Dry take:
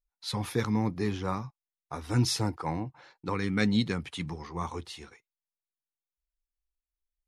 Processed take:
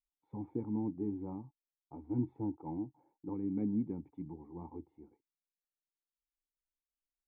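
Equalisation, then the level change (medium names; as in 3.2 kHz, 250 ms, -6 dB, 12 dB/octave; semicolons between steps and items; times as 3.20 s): cascade formant filter u; +1.0 dB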